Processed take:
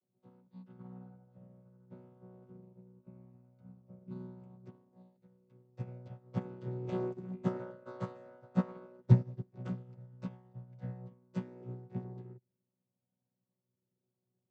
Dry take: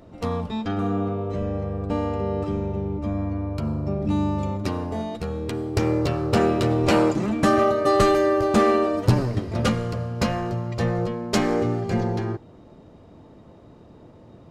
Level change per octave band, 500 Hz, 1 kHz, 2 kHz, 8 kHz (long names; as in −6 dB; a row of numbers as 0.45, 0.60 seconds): −23.0 dB, −26.5 dB, −27.0 dB, below −30 dB